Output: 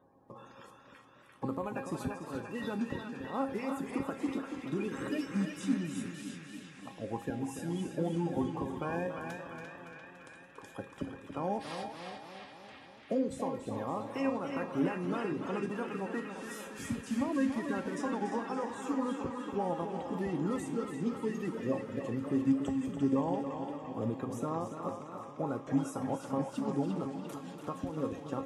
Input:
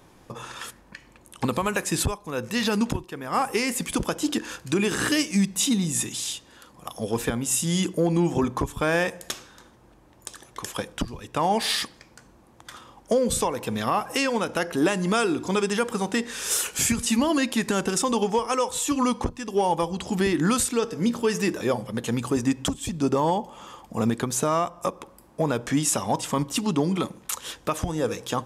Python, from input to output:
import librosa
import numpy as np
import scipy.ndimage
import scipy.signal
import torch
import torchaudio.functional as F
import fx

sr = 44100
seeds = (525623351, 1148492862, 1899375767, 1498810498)

y = fx.spec_quant(x, sr, step_db=30)
y = scipy.signal.sosfilt(scipy.signal.butter(2, 91.0, 'highpass', fs=sr, output='sos'), y)
y = fx.tilt_shelf(y, sr, db=9.0, hz=1500.0)
y = fx.comb_fb(y, sr, f0_hz=270.0, decay_s=0.35, harmonics='all', damping=0.0, mix_pct=80)
y = fx.echo_banded(y, sr, ms=345, feedback_pct=79, hz=2200.0, wet_db=-3.0)
y = fx.echo_warbled(y, sr, ms=285, feedback_pct=62, rate_hz=2.8, cents=96, wet_db=-9)
y = F.gain(torch.from_numpy(y), -6.0).numpy()